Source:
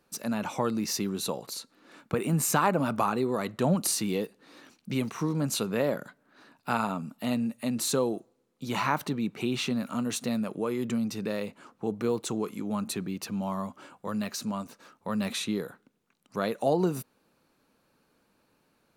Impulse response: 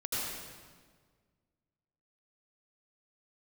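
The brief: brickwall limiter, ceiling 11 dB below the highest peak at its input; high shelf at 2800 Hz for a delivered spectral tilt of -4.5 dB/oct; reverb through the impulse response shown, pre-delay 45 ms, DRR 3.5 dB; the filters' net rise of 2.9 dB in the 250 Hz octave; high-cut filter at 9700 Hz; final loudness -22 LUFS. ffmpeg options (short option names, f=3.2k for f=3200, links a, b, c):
-filter_complex "[0:a]lowpass=9.7k,equalizer=f=250:t=o:g=3.5,highshelf=f=2.8k:g=6,alimiter=limit=-20dB:level=0:latency=1,asplit=2[a][b];[1:a]atrim=start_sample=2205,adelay=45[c];[b][c]afir=irnorm=-1:irlink=0,volume=-9dB[d];[a][d]amix=inputs=2:normalize=0,volume=7dB"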